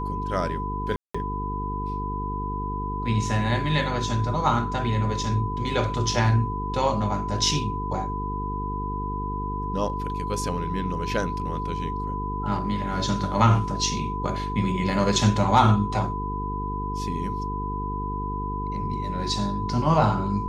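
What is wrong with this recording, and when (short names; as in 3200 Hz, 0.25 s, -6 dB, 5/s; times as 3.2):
buzz 50 Hz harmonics 9 -31 dBFS
tone 1000 Hz -30 dBFS
0.96–1.15 gap 0.185 s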